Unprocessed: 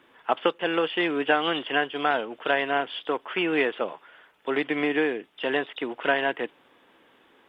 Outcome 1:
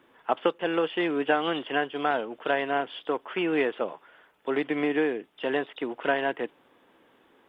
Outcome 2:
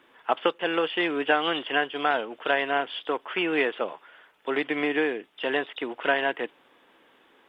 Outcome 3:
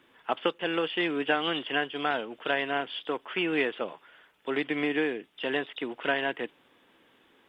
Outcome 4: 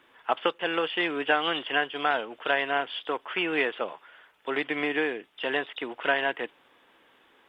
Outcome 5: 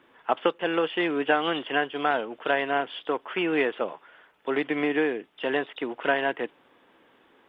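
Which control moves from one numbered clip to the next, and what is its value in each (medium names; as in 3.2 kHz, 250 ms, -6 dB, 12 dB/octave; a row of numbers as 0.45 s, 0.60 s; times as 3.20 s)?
peaking EQ, frequency: 3.3 kHz, 77 Hz, 830 Hz, 220 Hz, 9.9 kHz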